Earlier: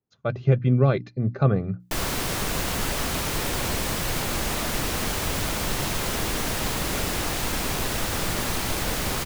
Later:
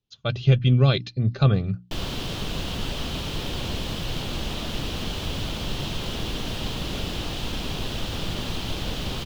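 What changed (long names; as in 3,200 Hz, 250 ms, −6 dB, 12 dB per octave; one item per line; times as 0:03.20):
speech: remove resonant band-pass 280 Hz, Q 0.51
master: add drawn EQ curve 170 Hz 0 dB, 2,100 Hz −10 dB, 3,100 Hz +3 dB, 8,900 Hz −16 dB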